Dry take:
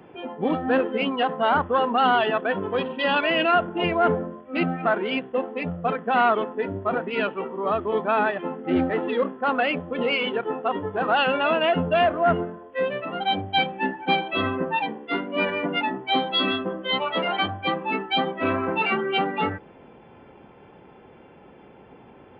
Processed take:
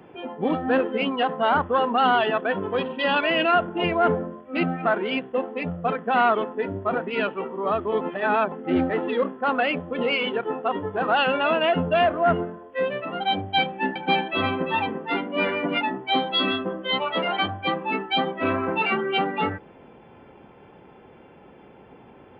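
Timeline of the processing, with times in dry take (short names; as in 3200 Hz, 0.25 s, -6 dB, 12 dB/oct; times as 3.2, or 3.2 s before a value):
8.01–8.52 reverse
13.61–15.78 echo 0.345 s -8 dB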